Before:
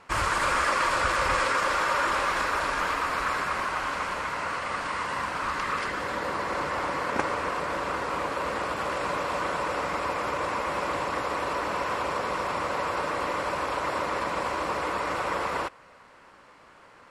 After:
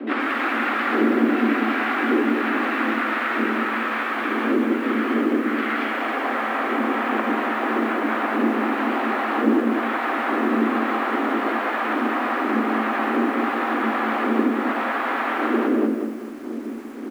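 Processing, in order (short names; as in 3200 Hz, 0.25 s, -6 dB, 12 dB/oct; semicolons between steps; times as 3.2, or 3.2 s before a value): wind noise 110 Hz -26 dBFS; compressor 4:1, threshold -26 dBFS, peak gain reduction 14.5 dB; harmoniser -3 st -13 dB, +7 st -3 dB; frequency shift +220 Hz; air absorption 460 m; lo-fi delay 0.194 s, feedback 35%, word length 9-bit, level -5 dB; gain +6.5 dB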